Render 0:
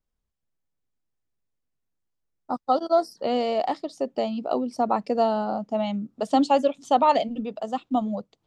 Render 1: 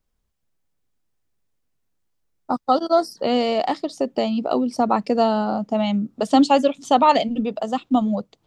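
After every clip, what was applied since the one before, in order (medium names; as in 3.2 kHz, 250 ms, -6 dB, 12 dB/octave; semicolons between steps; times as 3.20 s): dynamic bell 650 Hz, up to -5 dB, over -31 dBFS, Q 0.92; trim +7.5 dB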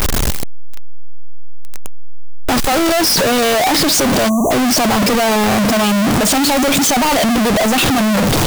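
one-bit comparator; spectral selection erased 4.29–4.51 s, 1.2–5.8 kHz; trim +8.5 dB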